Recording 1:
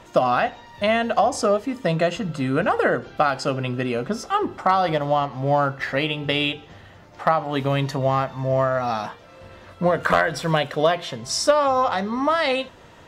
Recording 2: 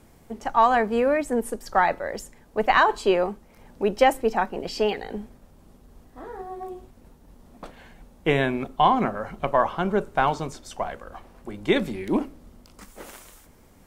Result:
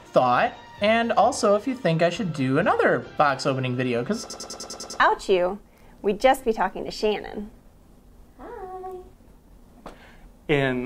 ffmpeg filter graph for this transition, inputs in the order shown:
-filter_complex "[0:a]apad=whole_dur=10.85,atrim=end=10.85,asplit=8[a][b][c][d][e][f][g][h];[a]atrim=end=4.302[i];[b]atrim=start=4.198:end=4.302[j];[c]atrim=start=4.198:end=4.302[k];[d]atrim=start=4.198:end=4.302[l];[e]atrim=start=4.198:end=4.302[m];[f]atrim=start=4.198:end=4.302[n];[g]atrim=start=4.198:end=4.302[o];[h]atrim=start=4.198:end=4.302[p];[1:a]atrim=start=2.768:end=8.62[q];[i][j]acrossfade=d=0.004:c1=hsin:c2=hsin[r];[r][k]acrossfade=d=0.004:c1=hsin:c2=hsin[s];[s][l]acrossfade=d=0.004:c1=hsin:c2=hsin[t];[t][m]acrossfade=d=0.004:c1=hsin:c2=hsin[u];[u][n]acrossfade=d=0.004:c1=hsin:c2=hsin[v];[v][o]acrossfade=d=0.004:c1=hsin:c2=hsin[w];[w][p]acrossfade=d=0.004:c1=hsin:c2=hsin[x];[x][q]acrossfade=d=0.004:c1=hsin:c2=hsin"

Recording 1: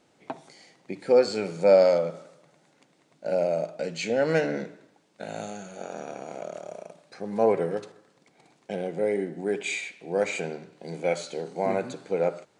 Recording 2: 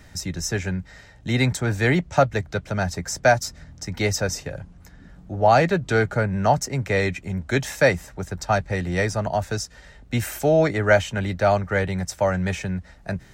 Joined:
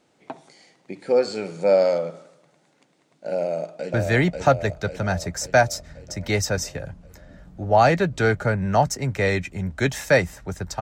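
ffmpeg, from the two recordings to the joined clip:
-filter_complex "[0:a]apad=whole_dur=10.81,atrim=end=10.81,atrim=end=3.942[a];[1:a]atrim=start=1.648:end=8.52[b];[a][b]acrossfade=d=0.004:c1=hsin:c2=hsin,asplit=2[c][d];[d]afade=t=in:st=3.38:d=0.01,afade=t=out:st=3.94:d=0.01,aecho=0:1:540|1080|1620|2160|2700|3240|3780|4320|4860:0.749894|0.449937|0.269962|0.161977|0.0971863|0.0583118|0.0349871|0.0209922|0.0125953[e];[c][e]amix=inputs=2:normalize=0"

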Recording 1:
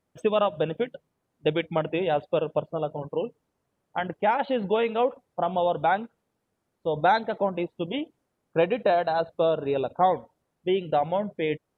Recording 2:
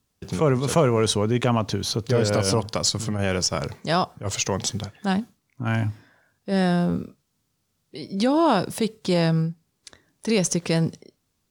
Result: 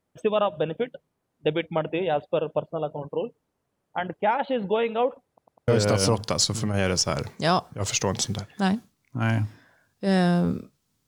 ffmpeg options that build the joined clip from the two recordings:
-filter_complex "[0:a]apad=whole_dur=11.07,atrim=end=11.07,asplit=4[a][b][c][d];[a]atrim=end=5.382[e];[b]atrim=start=5.278:end=5.382[f];[c]atrim=start=5.278:end=5.382[g];[d]atrim=start=5.278:end=5.382[h];[1:a]atrim=start=2.128:end=7.52[i];[e][f]acrossfade=d=0.004:c1=hsin:c2=hsin[j];[j][g]acrossfade=d=0.004:c1=hsin:c2=hsin[k];[k][h]acrossfade=d=0.004:c1=hsin:c2=hsin[l];[l][i]acrossfade=d=0.004:c1=hsin:c2=hsin"

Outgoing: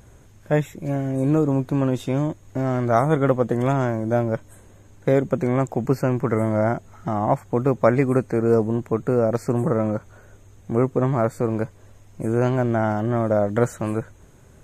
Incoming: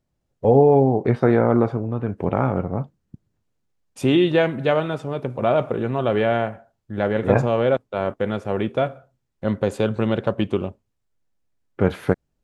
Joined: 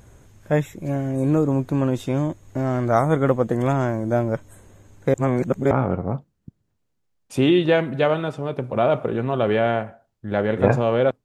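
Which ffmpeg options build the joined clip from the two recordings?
-filter_complex "[0:a]apad=whole_dur=11.24,atrim=end=11.24,asplit=2[a][b];[a]atrim=end=5.142[c];[b]atrim=start=5.138:end=5.712,asetpts=PTS-STARTPTS,areverse[d];[1:a]atrim=start=2.368:end=7.9[e];[c][d]acrossfade=d=0.004:c1=hsin:c2=hsin[f];[f][e]acrossfade=d=0.004:c1=hsin:c2=hsin"

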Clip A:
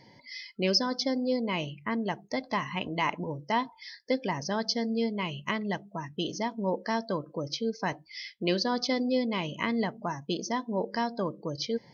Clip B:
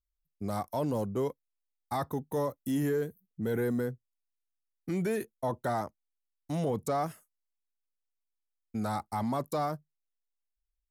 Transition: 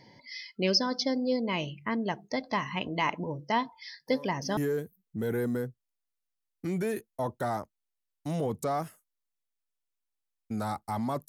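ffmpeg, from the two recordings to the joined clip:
-filter_complex "[1:a]asplit=2[a][b];[0:a]apad=whole_dur=11.28,atrim=end=11.28,atrim=end=4.572[c];[b]atrim=start=2.808:end=9.52[d];[a]atrim=start=2.25:end=2.81,asetpts=PTS-STARTPTS,volume=-15dB,afade=t=in:d=0.004:c=hsin,afade=t=out:st=0.556:d=0.004:c=hsin,adelay=176841S[e];[c][d]acrossfade=d=0.004:c1=hsin:c2=hsin[f];[f][e]amix=inputs=2:normalize=0"

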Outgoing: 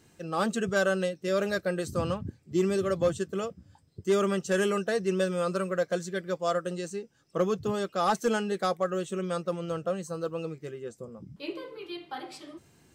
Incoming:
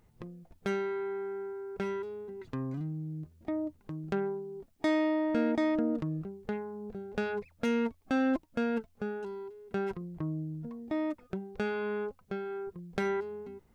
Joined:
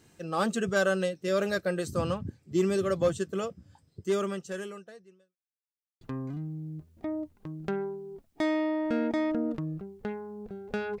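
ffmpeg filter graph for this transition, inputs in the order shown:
-filter_complex "[0:a]apad=whole_dur=11,atrim=end=11,asplit=2[a][b];[a]atrim=end=5.37,asetpts=PTS-STARTPTS,afade=t=out:st=3.9:d=1.47:c=qua[c];[b]atrim=start=5.37:end=6.01,asetpts=PTS-STARTPTS,volume=0[d];[1:a]atrim=start=2.45:end=7.44,asetpts=PTS-STARTPTS,afade=t=in:d=0.004:c=hsin[e];[c][d][e]concat=n=3:v=0:a=1"

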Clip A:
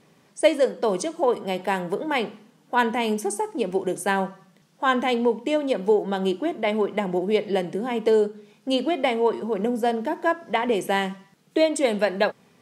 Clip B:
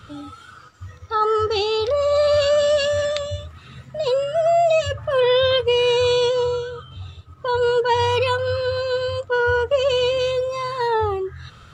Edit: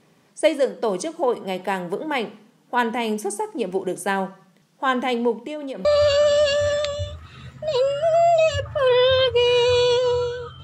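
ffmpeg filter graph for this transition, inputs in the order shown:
-filter_complex "[0:a]asettb=1/sr,asplit=3[a][b][c];[a]atrim=end=5.334[d];[b]atrim=start=5.33:end=5.85,asetpts=PTS-STARTPTS,afade=t=in:d=0.004:c=qsin,afade=t=out:st=0.516:d=0.004:c=qsin,acompressor=threshold=-27dB:ratio=6:attack=3.2:release=140:knee=1:detection=peak[e];[c]atrim=start=5.846[f];[d][e]acrossfade=d=0.004:c1=hsin:c2=qsin[g];[g][f]acrossfade=d=0.004:c1=qsin:c2=hsin,apad=whole_dur=10.63,atrim=end=10.63,atrim=end=5.852[h];[1:a]atrim=start=2.168:end=6.95[i];[h][i]acrossfade=d=0.004:c1=hsin:c2=hsin"

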